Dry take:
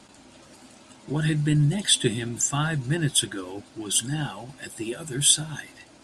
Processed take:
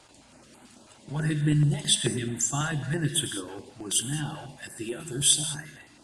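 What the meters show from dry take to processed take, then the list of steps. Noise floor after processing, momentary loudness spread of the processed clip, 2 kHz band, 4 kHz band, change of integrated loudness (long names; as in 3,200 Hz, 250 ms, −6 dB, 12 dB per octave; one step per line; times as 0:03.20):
−55 dBFS, 16 LU, −3.5 dB, −3.0 dB, −2.5 dB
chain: reverb whose tail is shaped and stops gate 230 ms flat, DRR 8 dB
notch on a step sequencer 9.2 Hz 220–5,300 Hz
level −2.5 dB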